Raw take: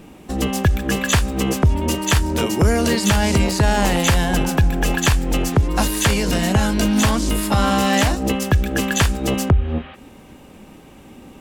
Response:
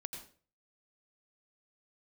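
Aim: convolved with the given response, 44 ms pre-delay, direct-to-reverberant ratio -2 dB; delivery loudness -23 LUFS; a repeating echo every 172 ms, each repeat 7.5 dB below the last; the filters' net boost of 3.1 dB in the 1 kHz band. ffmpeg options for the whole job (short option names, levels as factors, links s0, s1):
-filter_complex "[0:a]equalizer=f=1000:t=o:g=4,aecho=1:1:172|344|516|688|860:0.422|0.177|0.0744|0.0312|0.0131,asplit=2[s0][s1];[1:a]atrim=start_sample=2205,adelay=44[s2];[s1][s2]afir=irnorm=-1:irlink=0,volume=1.68[s3];[s0][s3]amix=inputs=2:normalize=0,volume=0.316"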